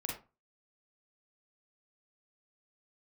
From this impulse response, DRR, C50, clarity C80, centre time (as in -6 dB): -2.0 dB, 3.5 dB, 11.0 dB, 34 ms